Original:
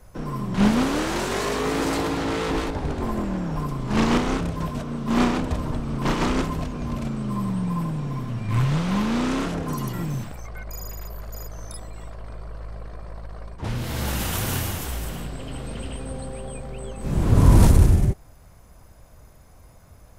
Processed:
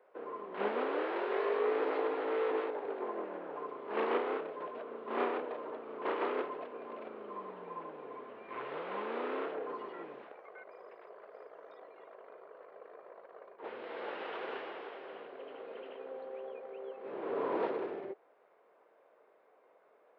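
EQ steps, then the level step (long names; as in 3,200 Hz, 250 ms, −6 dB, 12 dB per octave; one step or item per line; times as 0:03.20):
Gaussian smoothing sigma 3.9 samples
four-pole ladder high-pass 380 Hz, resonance 60%
spectral tilt +3 dB per octave
+1.5 dB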